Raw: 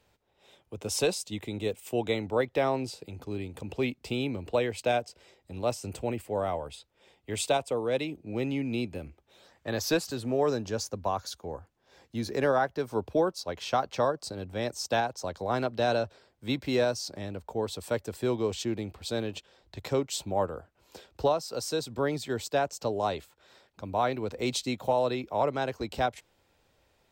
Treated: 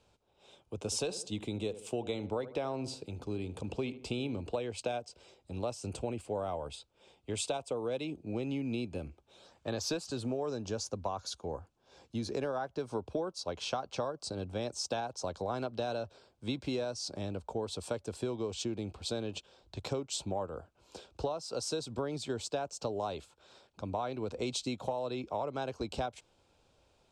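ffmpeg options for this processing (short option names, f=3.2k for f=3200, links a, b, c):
-filter_complex "[0:a]asettb=1/sr,asplit=3[a][b][c];[a]atrim=end=0.774[d];[b]atrim=start=0.77:end=4.42,asetpts=PTS-STARTPTS,afade=t=in:d=0.004:c=qsin,afade=t=out:st=3.646:d=0.004:c=qsin,asplit=2[e][f];[f]adelay=75,lowpass=f=1.6k:p=1,volume=-15dB,asplit=2[g][h];[h]adelay=75,lowpass=f=1.6k:p=1,volume=0.37,asplit=2[i][j];[j]adelay=75,lowpass=f=1.6k:p=1,volume=0.37[k];[e][g][i][k]amix=inputs=4:normalize=0,atrim=end_sample=160965[l];[c]atrim=start=4.416[m];[d][l]acrossfade=d=0.004:c1=hsin:c2=qsin[n];[n][m]acrossfade=d=0.004:c1=qsin:c2=hsin,lowpass=f=9.6k:w=0.5412,lowpass=f=9.6k:w=1.3066,equalizer=f=1.9k:w=4.5:g=-12.5,acompressor=threshold=-31dB:ratio=10"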